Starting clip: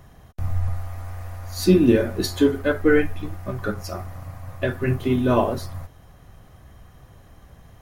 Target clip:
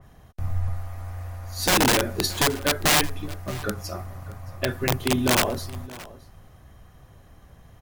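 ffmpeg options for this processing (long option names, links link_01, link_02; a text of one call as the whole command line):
ffmpeg -i in.wav -af "aeval=exprs='(mod(4.22*val(0)+1,2)-1)/4.22':channel_layout=same,aecho=1:1:622:0.112,adynamicequalizer=threshold=0.0178:dfrequency=2800:dqfactor=0.7:tfrequency=2800:tqfactor=0.7:attack=5:release=100:ratio=0.375:range=2.5:mode=boostabove:tftype=highshelf,volume=-2.5dB" out.wav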